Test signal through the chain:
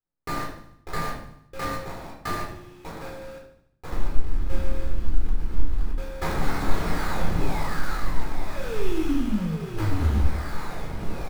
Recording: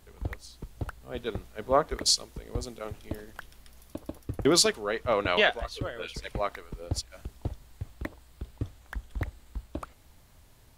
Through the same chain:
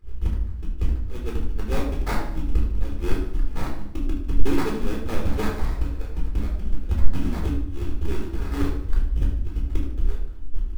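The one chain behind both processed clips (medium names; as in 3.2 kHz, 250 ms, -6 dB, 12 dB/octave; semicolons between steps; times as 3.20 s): square wave that keeps the level; bass shelf 180 Hz +10.5 dB; transient shaper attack +8 dB, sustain -8 dB; in parallel at -2 dB: compression, threshold -33 dBFS; on the sum: ever faster or slower copies 460 ms, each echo -7 st, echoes 3, each echo -6 dB; static phaser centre 320 Hz, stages 4; sample-rate reducer 3 kHz, jitter 20%; hard clipper -9 dBFS; tone controls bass +5 dB, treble -3 dB; on a send: feedback delay 75 ms, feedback 51%, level -12.5 dB; on the sum: simulated room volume 630 m³, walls furnished, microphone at 4 m; trim -16.5 dB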